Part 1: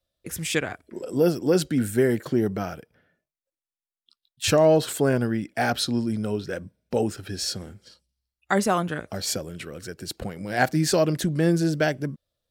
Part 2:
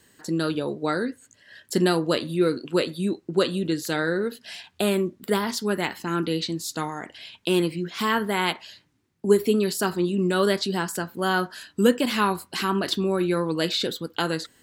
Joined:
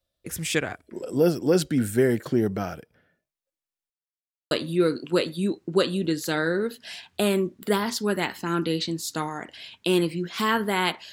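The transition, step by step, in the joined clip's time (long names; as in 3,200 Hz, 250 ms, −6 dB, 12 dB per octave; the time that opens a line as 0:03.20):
part 1
0:03.90–0:04.51: silence
0:04.51: continue with part 2 from 0:02.12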